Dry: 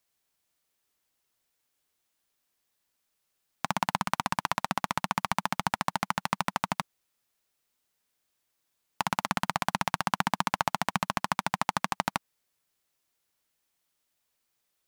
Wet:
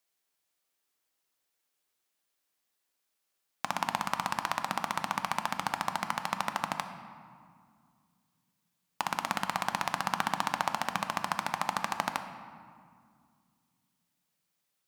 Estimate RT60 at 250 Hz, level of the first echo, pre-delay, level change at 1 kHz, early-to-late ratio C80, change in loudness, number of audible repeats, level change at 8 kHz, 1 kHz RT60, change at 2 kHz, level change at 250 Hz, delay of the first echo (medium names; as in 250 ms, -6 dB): 3.1 s, no echo, 3 ms, -2.0 dB, 10.0 dB, -2.0 dB, no echo, -2.0 dB, 2.1 s, -2.0 dB, -5.5 dB, no echo